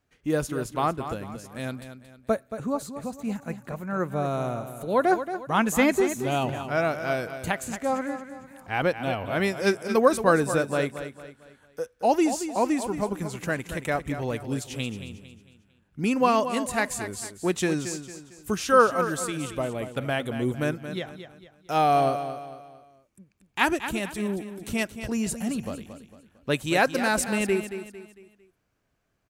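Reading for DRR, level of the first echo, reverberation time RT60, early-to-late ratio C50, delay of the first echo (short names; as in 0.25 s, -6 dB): none, -10.5 dB, none, none, 0.226 s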